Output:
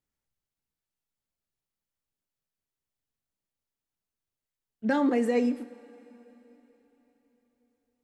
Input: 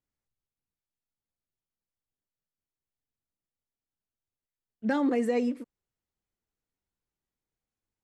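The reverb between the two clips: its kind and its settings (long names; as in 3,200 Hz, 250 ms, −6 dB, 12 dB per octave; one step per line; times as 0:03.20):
coupled-rooms reverb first 0.51 s, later 4 s, from −16 dB, DRR 11 dB
level +1.5 dB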